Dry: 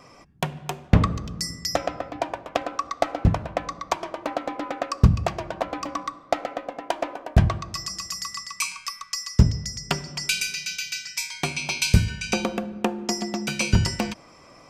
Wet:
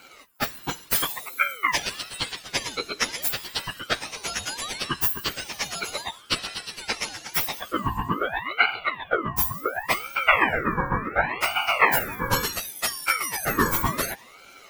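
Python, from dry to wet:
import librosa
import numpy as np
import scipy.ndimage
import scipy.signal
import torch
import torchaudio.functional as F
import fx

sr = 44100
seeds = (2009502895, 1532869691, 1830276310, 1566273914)

y = fx.octave_mirror(x, sr, pivot_hz=1600.0)
y = fx.ring_lfo(y, sr, carrier_hz=1200.0, swing_pct=55, hz=0.69)
y = F.gain(torch.from_numpy(y), 7.0).numpy()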